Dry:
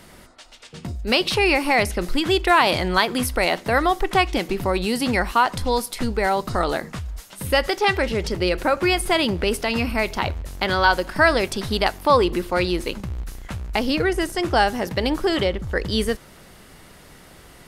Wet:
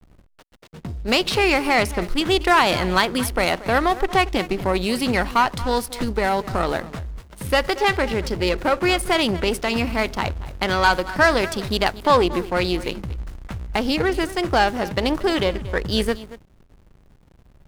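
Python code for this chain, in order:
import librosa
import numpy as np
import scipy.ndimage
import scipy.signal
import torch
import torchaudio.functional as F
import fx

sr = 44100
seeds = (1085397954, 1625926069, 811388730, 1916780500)

y = fx.cheby_harmonics(x, sr, harmonics=(6,), levels_db=(-22,), full_scale_db=-3.5)
y = y + 10.0 ** (-16.0 / 20.0) * np.pad(y, (int(231 * sr / 1000.0), 0))[:len(y)]
y = fx.backlash(y, sr, play_db=-33.5)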